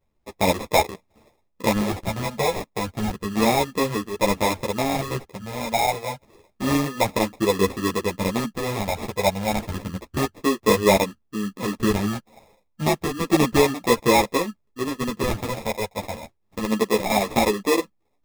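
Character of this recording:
phaser sweep stages 4, 0.3 Hz, lowest notch 310–3,100 Hz
aliases and images of a low sample rate 1,500 Hz, jitter 0%
a shimmering, thickened sound

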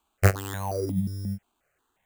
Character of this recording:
aliases and images of a low sample rate 5,300 Hz, jitter 0%
notches that jump at a steady rate 5.6 Hz 520–1,500 Hz

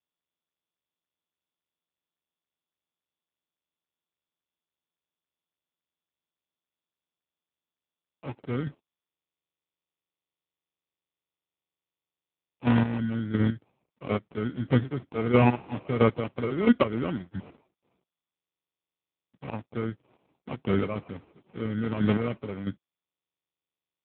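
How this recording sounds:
a quantiser's noise floor 12 bits, dither none
chopped level 1.5 Hz, depth 65%, duty 25%
aliases and images of a low sample rate 1,700 Hz, jitter 0%
AMR narrowband

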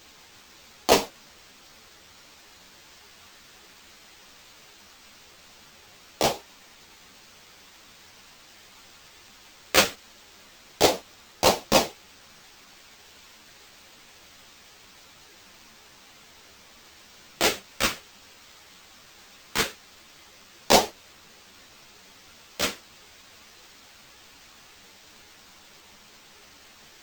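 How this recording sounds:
a quantiser's noise floor 10 bits, dither triangular
phaser sweep stages 2, 0.2 Hz, lowest notch 590–1,500 Hz
aliases and images of a low sample rate 11,000 Hz, jitter 0%
a shimmering, thickened sound

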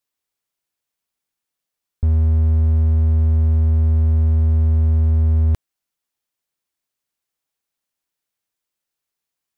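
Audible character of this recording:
background noise floor −84 dBFS
spectral slope −13.5 dB per octave

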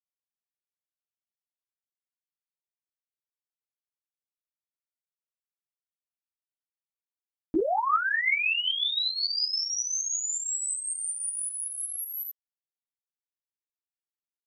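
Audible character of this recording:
tremolo saw up 5.4 Hz, depth 55%
a quantiser's noise floor 12 bits, dither none
a shimmering, thickened sound

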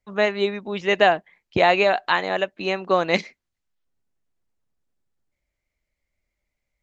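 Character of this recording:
background noise floor −82 dBFS
spectral slope −2.0 dB per octave

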